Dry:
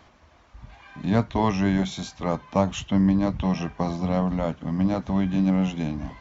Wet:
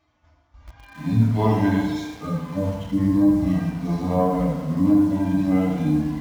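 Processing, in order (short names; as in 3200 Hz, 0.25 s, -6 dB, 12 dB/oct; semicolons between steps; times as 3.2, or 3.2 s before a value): median-filter separation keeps harmonic; gate -55 dBFS, range -10 dB; tape echo 73 ms, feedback 75%, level -11 dB, low-pass 4700 Hz; FDN reverb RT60 1.1 s, low-frequency decay 0.95×, high-frequency decay 0.65×, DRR -4 dB; in parallel at -9 dB: bit-crush 6-bit; on the sum: gain -3.5 dB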